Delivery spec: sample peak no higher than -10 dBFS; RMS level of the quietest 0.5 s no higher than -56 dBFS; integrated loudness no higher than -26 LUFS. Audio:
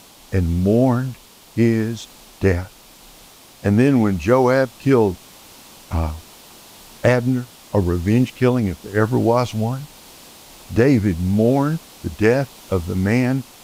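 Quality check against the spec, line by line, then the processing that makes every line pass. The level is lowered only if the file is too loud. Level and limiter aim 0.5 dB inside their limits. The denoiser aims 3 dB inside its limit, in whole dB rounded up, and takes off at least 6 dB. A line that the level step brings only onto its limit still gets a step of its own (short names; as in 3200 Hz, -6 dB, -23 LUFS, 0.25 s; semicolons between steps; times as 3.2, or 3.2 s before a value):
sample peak -2.0 dBFS: fail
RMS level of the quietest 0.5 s -45 dBFS: fail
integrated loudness -19.0 LUFS: fail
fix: denoiser 7 dB, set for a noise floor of -45 dBFS; gain -7.5 dB; limiter -10.5 dBFS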